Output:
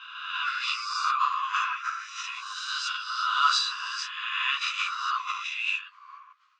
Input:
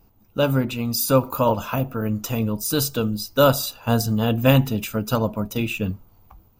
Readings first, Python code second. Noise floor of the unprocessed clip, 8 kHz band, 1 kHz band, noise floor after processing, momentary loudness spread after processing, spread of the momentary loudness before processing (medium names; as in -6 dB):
-56 dBFS, -9.5 dB, +0.5 dB, -55 dBFS, 11 LU, 8 LU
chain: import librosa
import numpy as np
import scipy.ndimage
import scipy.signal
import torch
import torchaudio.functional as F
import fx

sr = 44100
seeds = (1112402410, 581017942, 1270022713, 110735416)

y = fx.spec_swells(x, sr, rise_s=1.34)
y = fx.transient(y, sr, attack_db=-6, sustain_db=11)
y = fx.brickwall_bandpass(y, sr, low_hz=1000.0, high_hz=8600.0)
y = fx.air_absorb(y, sr, metres=210.0)
y = fx.ensemble(y, sr)
y = y * 10.0 ** (3.0 / 20.0)